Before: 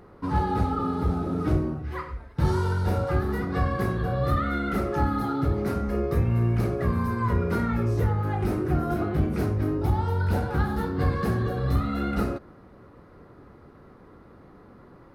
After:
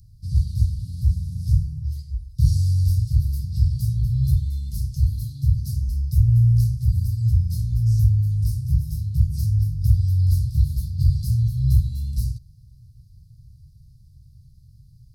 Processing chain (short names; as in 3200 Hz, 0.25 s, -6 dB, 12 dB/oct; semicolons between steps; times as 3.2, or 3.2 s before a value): Chebyshev band-stop 130–4800 Hz, order 4; gain +8.5 dB